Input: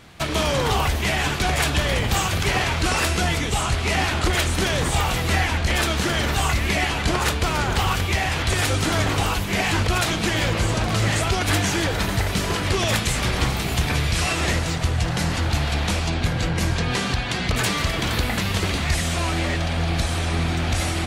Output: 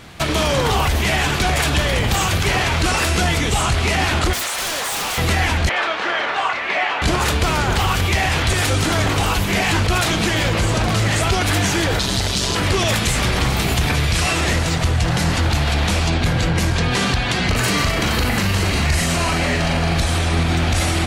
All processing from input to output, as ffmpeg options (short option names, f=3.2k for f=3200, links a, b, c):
-filter_complex "[0:a]asettb=1/sr,asplit=3[a][b][c];[a]atrim=end=4.334[d];[b]atrim=start=4.33:end=5.18,asetpts=PTS-STARTPTS,afade=t=in:d=0.004:c=qsin,afade=t=out:st=0.846:d=0.004:c=qsin,highpass=f=590:w=0.5412,highpass=f=590:w=1.3066,aeval=exprs='0.0562*(abs(mod(val(0)/0.0562+3,4)-2)-1)':c=same[e];[c]atrim=start=5.176[f];[d][e]acrossfade=d=0.004:c1=hsin:c2=qsin[g];[g][f]acrossfade=d=0.004:c1=qsin:c2=hsin,asettb=1/sr,asplit=3[h][i][j];[h]atrim=end=5.694[k];[i]atrim=start=5.69:end=7.02,asetpts=PTS-STARTPTS,afade=t=in:d=0.004:c=qsin,afade=t=out:st=1.326:d=0.004:c=qsin,highpass=790,lowpass=2.8k,tiltshelf=f=1.3k:g=3.5,asplit=2[l][m];[m]adelay=29,volume=-10.5dB[n];[l][n]amix=inputs=2:normalize=0,atrim=end_sample=58653[o];[j]atrim=start=7.016[p];[k][o]acrossfade=d=0.004:c1=hsin:c2=qsin[q];[q][p]acrossfade=d=0.004:c1=qsin:c2=hsin,asettb=1/sr,asplit=3[r][s][t];[r]atrim=end=11.994[u];[s]atrim=start=11.99:end=12.55,asetpts=PTS-STARTPTS,afade=t=in:d=0.004:c=qsin,afade=t=out:st=0.556:d=0.004:c=qsin,lowpass=8.6k,highshelf=f=2.9k:t=q:w=1.5:g=8,tremolo=f=130:d=0.571[v];[t]atrim=start=12.546[w];[u][v]acrossfade=d=0.004:c1=hsin:c2=qsin[x];[x][w]acrossfade=d=0.004:c1=qsin:c2=hsin,asettb=1/sr,asplit=3[y][z][aa];[y]atrim=end=17.444[ab];[z]atrim=start=17.44:end=19.97,asetpts=PTS-STARTPTS,afade=t=in:d=0.004:c=qsin,afade=t=out:st=2.526:d=0.004:c=qsin,bandreject=f=3.5k:w=9.7,asplit=2[ac][ad];[ad]adelay=41,volume=-5dB[ae];[ac][ae]amix=inputs=2:normalize=0,atrim=end_sample=111573[af];[aa]atrim=start=19.966[ag];[ab][af]acrossfade=d=0.004:c1=hsin:c2=qsin[ah];[ah][ag]acrossfade=d=0.004:c1=qsin:c2=hsin,acontrast=90,alimiter=level_in=8.5dB:limit=-1dB:release=50:level=0:latency=1,volume=-9dB"